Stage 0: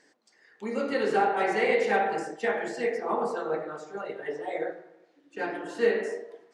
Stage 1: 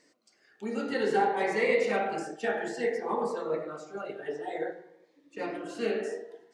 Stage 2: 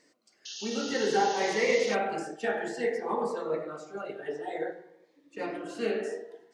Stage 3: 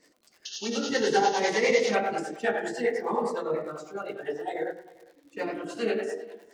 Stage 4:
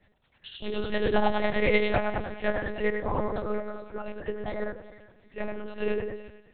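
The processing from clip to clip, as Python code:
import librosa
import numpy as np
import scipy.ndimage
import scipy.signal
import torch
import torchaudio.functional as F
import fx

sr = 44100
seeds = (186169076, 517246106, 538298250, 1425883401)

y1 = fx.notch_cascade(x, sr, direction='rising', hz=0.55)
y2 = fx.spec_paint(y1, sr, seeds[0], shape='noise', start_s=0.45, length_s=1.5, low_hz=2600.0, high_hz=6800.0, level_db=-41.0)
y3 = fx.dmg_crackle(y2, sr, seeds[1], per_s=130.0, level_db=-51.0)
y3 = fx.harmonic_tremolo(y3, sr, hz=9.9, depth_pct=70, crossover_hz=400.0)
y3 = y3 + 10.0 ** (-23.5 / 20.0) * np.pad(y3, (int(403 * sr / 1000.0), 0))[:len(y3)]
y3 = y3 * 10.0 ** (6.0 / 20.0)
y4 = fx.fade_out_tail(y3, sr, length_s=0.6)
y4 = fx.echo_split(y4, sr, split_hz=1200.0, low_ms=114, high_ms=367, feedback_pct=52, wet_db=-15.5)
y4 = fx.lpc_monotone(y4, sr, seeds[2], pitch_hz=210.0, order=8)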